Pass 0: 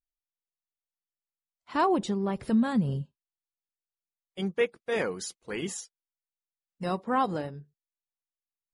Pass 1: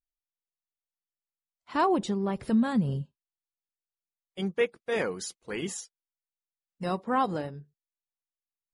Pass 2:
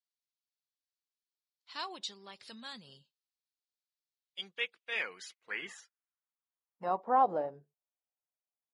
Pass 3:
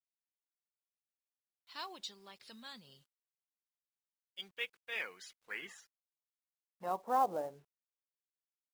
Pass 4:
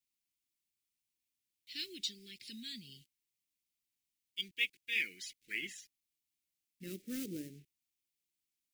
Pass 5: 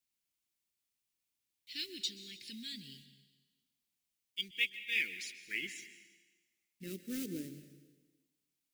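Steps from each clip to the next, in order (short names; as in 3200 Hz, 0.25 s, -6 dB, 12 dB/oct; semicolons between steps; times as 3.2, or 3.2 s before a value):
nothing audible
band-pass sweep 4300 Hz -> 670 Hz, 4.11–7.28; gain +4.5 dB
companded quantiser 6-bit; gain -4.5 dB
elliptic band-stop 330–2200 Hz, stop band 60 dB; gain +7.5 dB
plate-style reverb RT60 1.3 s, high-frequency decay 1×, pre-delay 0.115 s, DRR 12 dB; gain +1 dB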